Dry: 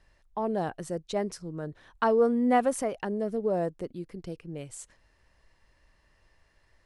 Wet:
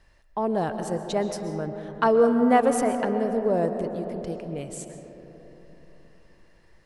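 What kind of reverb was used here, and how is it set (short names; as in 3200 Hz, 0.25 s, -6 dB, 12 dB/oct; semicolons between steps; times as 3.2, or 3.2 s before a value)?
digital reverb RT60 4 s, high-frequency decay 0.3×, pre-delay 90 ms, DRR 7 dB; gain +4 dB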